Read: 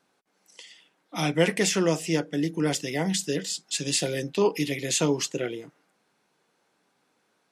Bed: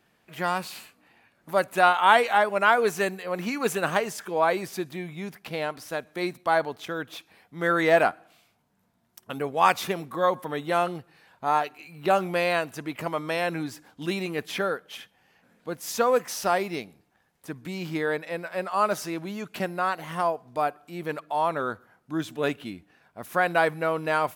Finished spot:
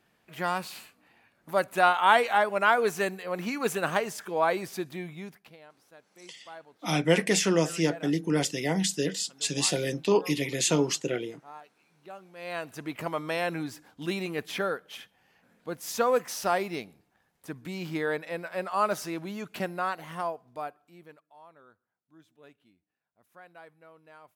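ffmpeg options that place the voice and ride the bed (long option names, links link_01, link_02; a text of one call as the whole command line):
ffmpeg -i stem1.wav -i stem2.wav -filter_complex "[0:a]adelay=5700,volume=-0.5dB[link_01];[1:a]volume=18dB,afade=type=out:start_time=5.06:duration=0.51:silence=0.0944061,afade=type=in:start_time=12.36:duration=0.51:silence=0.0944061,afade=type=out:start_time=19.58:duration=1.65:silence=0.0530884[link_02];[link_01][link_02]amix=inputs=2:normalize=0" out.wav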